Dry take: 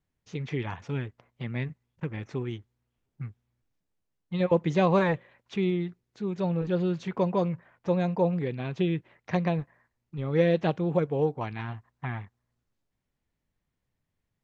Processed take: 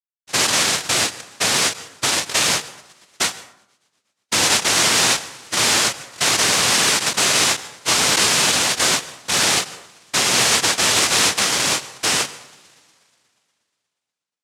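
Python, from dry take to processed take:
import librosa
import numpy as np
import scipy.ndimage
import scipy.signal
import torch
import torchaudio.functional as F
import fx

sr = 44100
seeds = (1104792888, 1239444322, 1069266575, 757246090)

p1 = fx.highpass(x, sr, hz=350.0, slope=6)
p2 = fx.low_shelf(p1, sr, hz=470.0, db=9.5)
p3 = fx.fuzz(p2, sr, gain_db=44.0, gate_db=-50.0)
p4 = p3 + fx.echo_wet_highpass(p3, sr, ms=120, feedback_pct=72, hz=4600.0, wet_db=-5, dry=0)
p5 = fx.noise_vocoder(p4, sr, seeds[0], bands=1)
p6 = fx.rev_plate(p5, sr, seeds[1], rt60_s=0.73, hf_ratio=0.55, predelay_ms=90, drr_db=17.0)
p7 = fx.end_taper(p6, sr, db_per_s=230.0)
y = p7 * 10.0 ** (-2.5 / 20.0)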